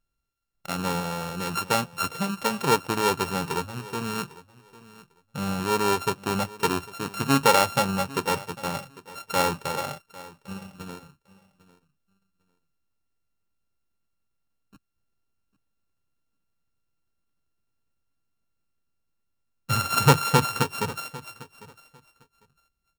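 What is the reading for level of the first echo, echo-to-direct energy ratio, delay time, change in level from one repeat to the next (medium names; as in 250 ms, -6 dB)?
-19.5 dB, -19.5 dB, 800 ms, -15.5 dB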